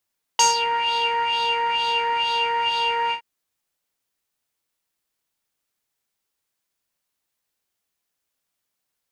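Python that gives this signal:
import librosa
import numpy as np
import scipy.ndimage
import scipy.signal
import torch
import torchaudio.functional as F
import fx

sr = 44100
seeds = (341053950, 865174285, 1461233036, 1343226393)

y = fx.sub_patch_wobble(sr, seeds[0], note=82, wave='square', wave2='saw', interval_st=-12, level2_db=-4.5, sub_db=-15.0, noise_db=-7, kind='lowpass', cutoff_hz=1500.0, q=4.4, env_oct=2.0, env_decay_s=0.27, env_sustain_pct=40, attack_ms=2.6, decay_s=0.15, sustain_db=-10.0, release_s=0.1, note_s=2.72, lfo_hz=2.2, wobble_oct=0.5)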